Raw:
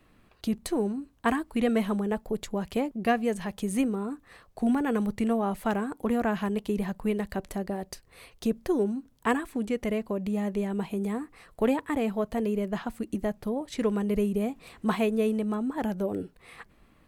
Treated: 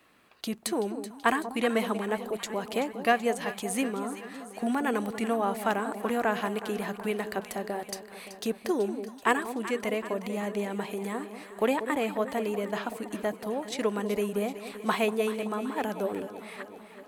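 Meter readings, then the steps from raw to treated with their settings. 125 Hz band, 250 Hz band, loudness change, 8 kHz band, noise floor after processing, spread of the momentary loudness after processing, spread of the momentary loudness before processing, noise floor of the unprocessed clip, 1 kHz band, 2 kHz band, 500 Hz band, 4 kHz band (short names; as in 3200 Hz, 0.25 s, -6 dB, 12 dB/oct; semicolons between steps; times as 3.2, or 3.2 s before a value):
-6.0 dB, -4.5 dB, -1.0 dB, +5.0 dB, -49 dBFS, 9 LU, 7 LU, -61 dBFS, +3.0 dB, +4.5 dB, 0.0 dB, +4.5 dB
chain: HPF 670 Hz 6 dB/oct; on a send: echo with dull and thin repeats by turns 0.19 s, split 900 Hz, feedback 76%, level -10 dB; on the sum: gain +4.5 dB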